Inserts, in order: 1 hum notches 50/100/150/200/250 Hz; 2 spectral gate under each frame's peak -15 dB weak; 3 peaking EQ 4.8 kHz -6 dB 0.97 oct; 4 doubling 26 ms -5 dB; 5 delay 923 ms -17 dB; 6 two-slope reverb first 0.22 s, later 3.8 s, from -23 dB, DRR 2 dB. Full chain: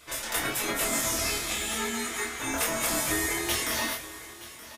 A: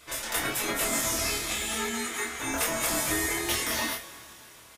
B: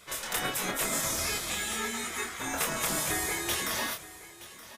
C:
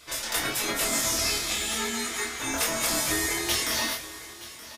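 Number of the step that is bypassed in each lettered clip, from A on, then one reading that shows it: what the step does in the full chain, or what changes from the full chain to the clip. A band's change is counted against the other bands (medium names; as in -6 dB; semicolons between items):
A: 5, momentary loudness spread change -3 LU; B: 6, momentary loudness spread change +1 LU; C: 3, 4 kHz band +4.0 dB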